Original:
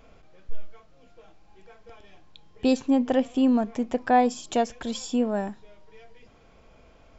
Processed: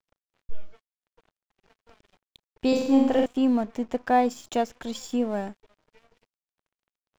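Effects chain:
dead-zone distortion −45.5 dBFS
0:02.68–0:03.26: flutter between parallel walls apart 7.6 metres, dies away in 0.85 s
level −1 dB

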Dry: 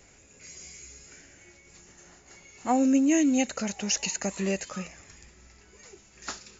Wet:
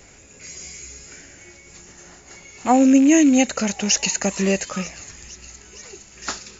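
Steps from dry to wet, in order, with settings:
loose part that buzzes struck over −39 dBFS, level −33 dBFS
delay with a high-pass on its return 465 ms, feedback 79%, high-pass 3,400 Hz, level −17 dB
level +8.5 dB

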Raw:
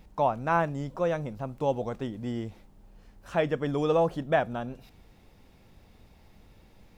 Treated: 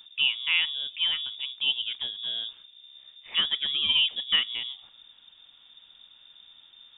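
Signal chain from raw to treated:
voice inversion scrambler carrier 3,600 Hz

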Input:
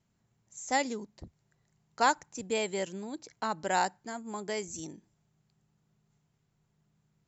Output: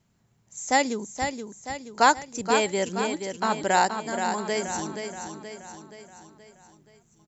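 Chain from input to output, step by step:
repeating echo 476 ms, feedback 51%, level −7 dB
level +7 dB

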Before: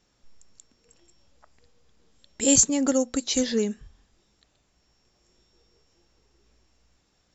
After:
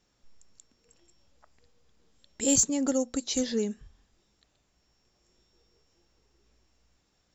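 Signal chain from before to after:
dynamic equaliser 2,000 Hz, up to −3 dB, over −42 dBFS, Q 0.7
in parallel at −8 dB: soft clipping −15 dBFS, distortion −14 dB
on the sum: level −6.5 dB

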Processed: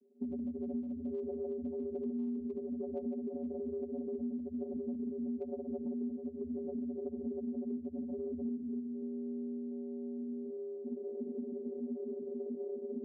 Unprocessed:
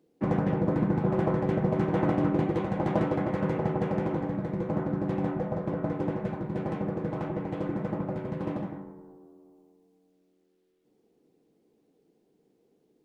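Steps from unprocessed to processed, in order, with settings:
camcorder AGC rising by 14 dB per second
low-shelf EQ 270 Hz −9.5 dB
in parallel at −4 dB: sample-rate reduction 1,300 Hz, jitter 0%
on the sum: spectral peaks only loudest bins 2
gain into a clipping stage and back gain 30 dB
flat-topped bell 1,200 Hz −15 dB
on a send at −22 dB: convolution reverb RT60 1.7 s, pre-delay 5 ms
on the sum: channel vocoder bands 16, square 80.3 Hz
downward compressor 6 to 1, threshold −44 dBFS, peak gain reduction 15.5 dB
level +8 dB

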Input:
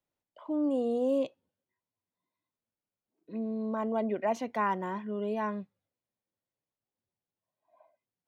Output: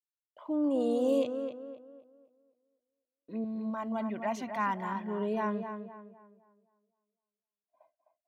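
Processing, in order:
0:00.80–0:01.24: high-shelf EQ 2,300 Hz +8.5 dB
downward expander −58 dBFS
0:03.44–0:05.01: parametric band 460 Hz −14 dB 0.73 octaves
tape delay 257 ms, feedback 40%, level −6.5 dB, low-pass 2,100 Hz

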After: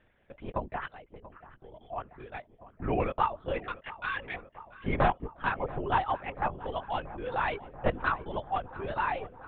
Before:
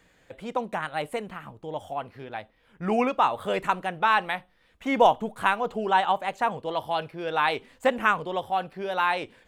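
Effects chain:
wavefolder on the positive side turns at −14 dBFS
reverb reduction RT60 1.9 s
0:03.62–0:04.34: inverse Chebyshev high-pass filter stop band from 400 Hz, stop band 60 dB
linear-prediction vocoder at 8 kHz whisper
0:00.87–0:01.81: downward compressor 4 to 1, threshold −45 dBFS, peak gain reduction 16 dB
high-frequency loss of the air 260 metres
feedback echo with a low-pass in the loop 684 ms, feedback 80%, low-pass 2,100 Hz, level −17 dB
level −3.5 dB

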